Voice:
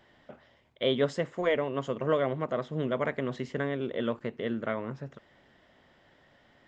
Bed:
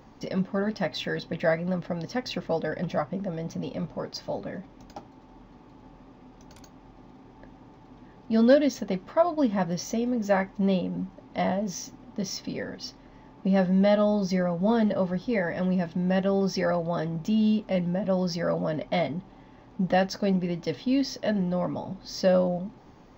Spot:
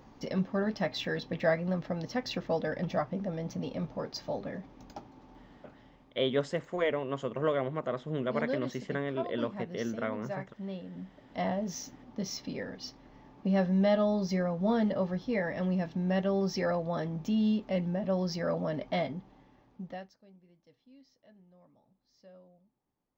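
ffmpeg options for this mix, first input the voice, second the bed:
ffmpeg -i stem1.wav -i stem2.wav -filter_complex "[0:a]adelay=5350,volume=-2.5dB[link_01];[1:a]volume=7.5dB,afade=type=out:start_time=5.26:duration=0.96:silence=0.251189,afade=type=in:start_time=10.81:duration=0.76:silence=0.298538,afade=type=out:start_time=18.91:duration=1.24:silence=0.0354813[link_02];[link_01][link_02]amix=inputs=2:normalize=0" out.wav

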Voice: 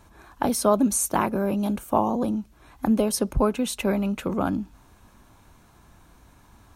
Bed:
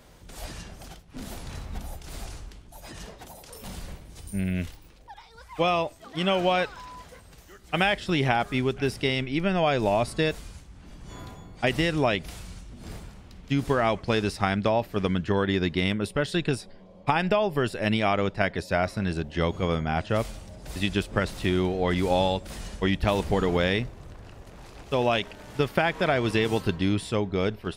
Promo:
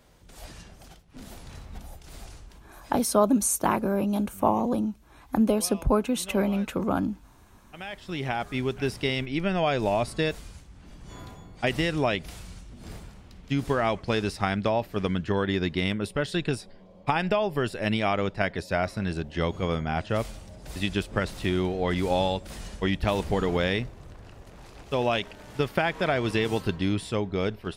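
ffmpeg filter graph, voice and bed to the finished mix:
ffmpeg -i stem1.wav -i stem2.wav -filter_complex "[0:a]adelay=2500,volume=-1dB[link_01];[1:a]volume=12.5dB,afade=type=out:start_time=2.79:duration=0.3:silence=0.199526,afade=type=in:start_time=7.76:duration=1.02:silence=0.125893[link_02];[link_01][link_02]amix=inputs=2:normalize=0" out.wav

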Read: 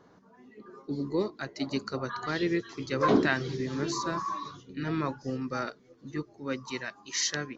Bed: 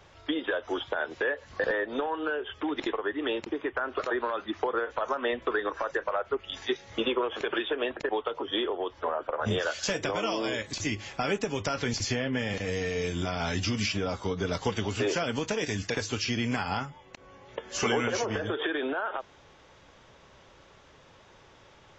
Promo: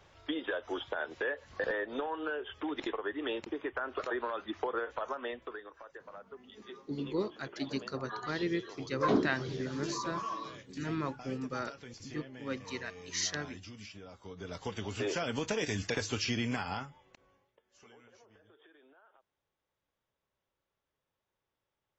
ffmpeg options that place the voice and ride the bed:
ffmpeg -i stem1.wav -i stem2.wav -filter_complex "[0:a]adelay=6000,volume=-4.5dB[link_01];[1:a]volume=11dB,afade=type=out:start_time=4.9:duration=0.76:silence=0.199526,afade=type=in:start_time=14.19:duration=1.36:silence=0.149624,afade=type=out:start_time=16.29:duration=1.23:silence=0.0354813[link_02];[link_01][link_02]amix=inputs=2:normalize=0" out.wav

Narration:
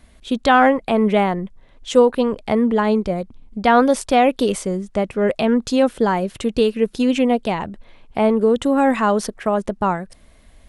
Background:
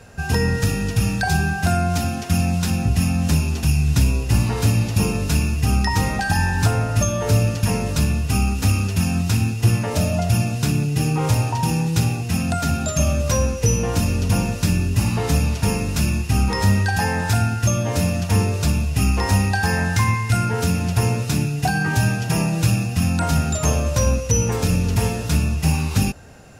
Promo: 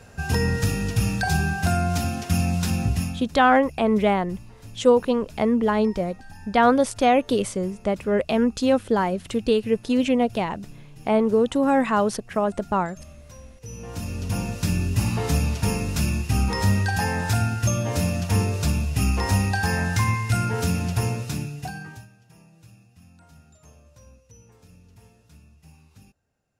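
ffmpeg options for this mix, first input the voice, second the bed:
ffmpeg -i stem1.wav -i stem2.wav -filter_complex "[0:a]adelay=2900,volume=-3.5dB[link_01];[1:a]volume=19.5dB,afade=type=out:start_time=2.85:duration=0.43:silence=0.0707946,afade=type=in:start_time=13.6:duration=1.26:silence=0.0749894,afade=type=out:start_time=20.79:duration=1.28:silence=0.0354813[link_02];[link_01][link_02]amix=inputs=2:normalize=0" out.wav

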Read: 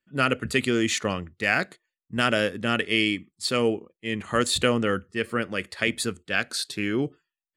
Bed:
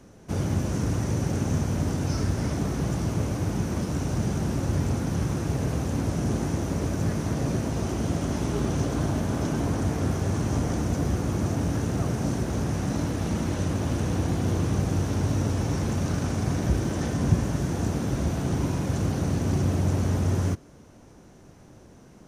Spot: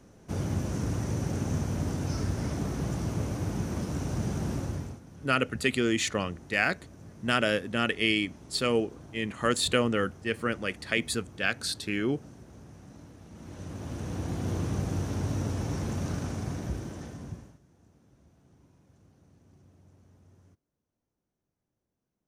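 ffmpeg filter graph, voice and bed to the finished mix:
ffmpeg -i stem1.wav -i stem2.wav -filter_complex "[0:a]adelay=5100,volume=-3dB[link_01];[1:a]volume=12.5dB,afade=type=out:start_time=4.54:duration=0.46:silence=0.125893,afade=type=in:start_time=13.31:duration=1.25:silence=0.141254,afade=type=out:start_time=16.1:duration=1.49:silence=0.0334965[link_02];[link_01][link_02]amix=inputs=2:normalize=0" out.wav

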